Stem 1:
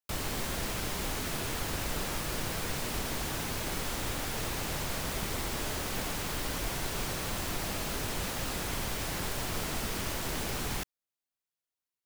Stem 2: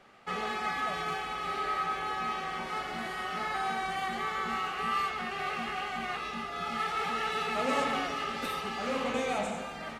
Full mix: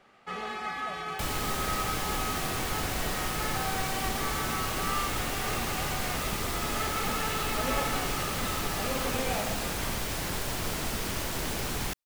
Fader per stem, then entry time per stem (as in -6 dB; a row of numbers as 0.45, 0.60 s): +2.0, -2.0 dB; 1.10, 0.00 s